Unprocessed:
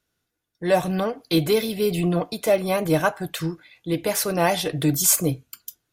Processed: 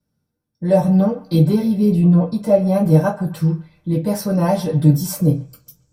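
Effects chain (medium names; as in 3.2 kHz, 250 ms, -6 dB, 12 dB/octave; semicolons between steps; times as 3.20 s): 1.45–2.74 s: treble shelf 5.6 kHz -6.5 dB; feedback echo behind a band-pass 133 ms, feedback 36%, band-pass 1.6 kHz, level -15 dB; reverberation RT60 0.20 s, pre-delay 3 ms, DRR -8 dB; 4.20–5.25 s: dynamic bell 9.1 kHz, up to -6 dB, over -21 dBFS, Q 0.86; trim -14.5 dB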